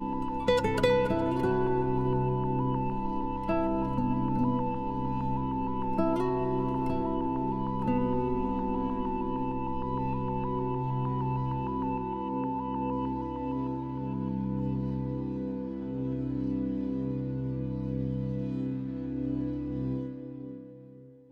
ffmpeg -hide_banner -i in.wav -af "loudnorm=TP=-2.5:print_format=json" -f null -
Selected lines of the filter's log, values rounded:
"input_i" : "-31.2",
"input_tp" : "-12.1",
"input_lra" : "6.4",
"input_thresh" : "-41.5",